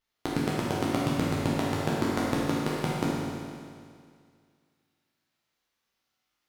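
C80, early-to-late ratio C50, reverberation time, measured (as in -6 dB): -1.0 dB, -3.0 dB, 2.1 s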